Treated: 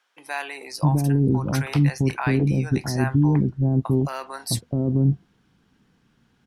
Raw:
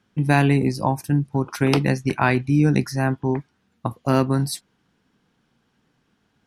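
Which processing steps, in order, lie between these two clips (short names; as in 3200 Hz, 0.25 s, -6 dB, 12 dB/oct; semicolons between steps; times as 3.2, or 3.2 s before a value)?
low shelf 190 Hz +6 dB; limiter -13 dBFS, peak gain reduction 11.5 dB; bands offset in time highs, lows 0.66 s, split 600 Hz; gain +2 dB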